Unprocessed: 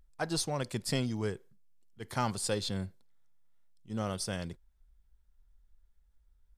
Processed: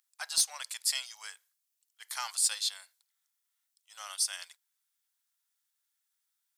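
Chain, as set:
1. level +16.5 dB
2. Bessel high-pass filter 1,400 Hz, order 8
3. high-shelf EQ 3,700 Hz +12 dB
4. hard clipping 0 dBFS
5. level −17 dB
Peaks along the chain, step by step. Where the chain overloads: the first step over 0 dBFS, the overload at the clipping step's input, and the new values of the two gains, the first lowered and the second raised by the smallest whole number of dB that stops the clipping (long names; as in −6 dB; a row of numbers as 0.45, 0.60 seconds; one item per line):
−0.5, −3.0, +5.5, 0.0, −17.0 dBFS
step 3, 5.5 dB
step 1 +10.5 dB, step 5 −11 dB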